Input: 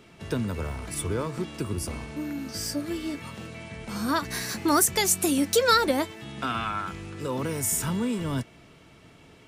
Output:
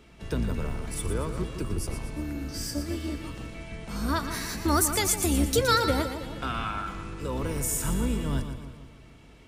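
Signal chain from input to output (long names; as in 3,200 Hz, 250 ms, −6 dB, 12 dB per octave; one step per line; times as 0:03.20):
sub-octave generator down 2 octaves, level +2 dB
echo with a time of its own for lows and highs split 1,300 Hz, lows 157 ms, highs 118 ms, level −9 dB
level −3 dB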